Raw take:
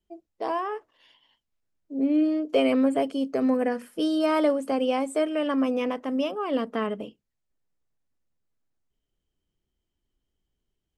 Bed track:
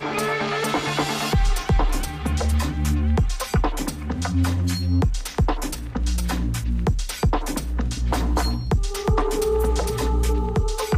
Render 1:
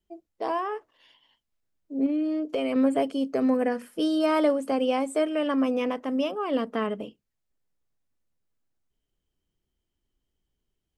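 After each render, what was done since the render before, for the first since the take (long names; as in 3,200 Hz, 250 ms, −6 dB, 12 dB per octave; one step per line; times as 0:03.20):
0:02.06–0:02.76: downward compressor 4 to 1, threshold −24 dBFS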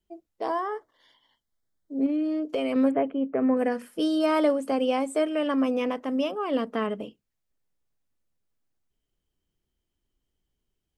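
0:00.48–0:01.99: Butterworth band-reject 2,600 Hz, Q 2.8
0:02.91–0:03.57: inverse Chebyshev low-pass filter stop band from 4,600 Hz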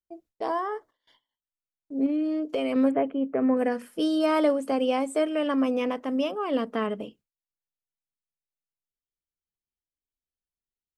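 noise gate with hold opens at −49 dBFS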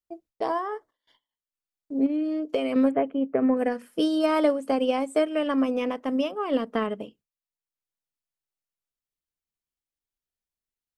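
transient designer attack +4 dB, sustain −4 dB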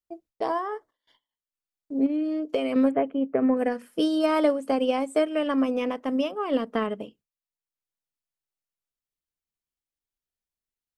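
no processing that can be heard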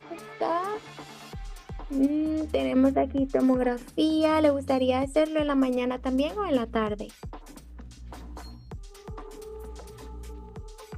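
mix in bed track −20 dB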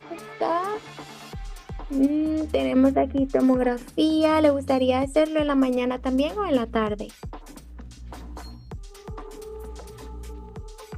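level +3 dB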